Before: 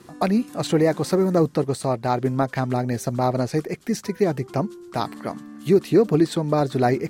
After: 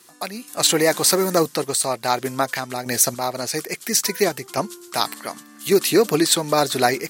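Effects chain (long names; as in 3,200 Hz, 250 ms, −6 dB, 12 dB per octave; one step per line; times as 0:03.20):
spectral tilt +4.5 dB per octave
automatic gain control gain up to 9 dB
sample-and-hold tremolo 3.5 Hz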